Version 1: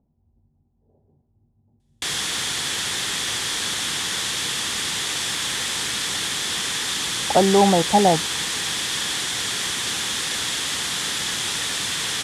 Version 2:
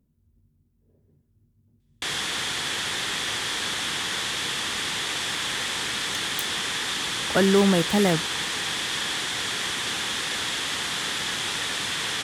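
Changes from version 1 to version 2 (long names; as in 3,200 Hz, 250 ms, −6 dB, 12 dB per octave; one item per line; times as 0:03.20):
speech: remove low-pass with resonance 800 Hz, resonance Q 6.4
background: add bass and treble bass −3 dB, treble −7 dB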